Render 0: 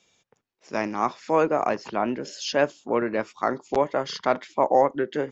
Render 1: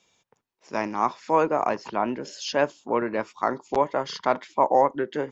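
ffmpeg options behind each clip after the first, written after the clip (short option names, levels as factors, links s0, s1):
-af "equalizer=f=960:w=3.9:g=6,volume=0.841"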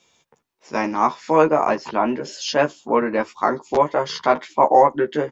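-filter_complex "[0:a]asplit=2[s0][s1];[s1]adelay=13,volume=0.668[s2];[s0][s2]amix=inputs=2:normalize=0,volume=1.58"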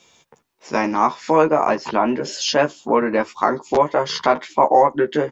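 -af "acompressor=threshold=0.0398:ratio=1.5,volume=2.11"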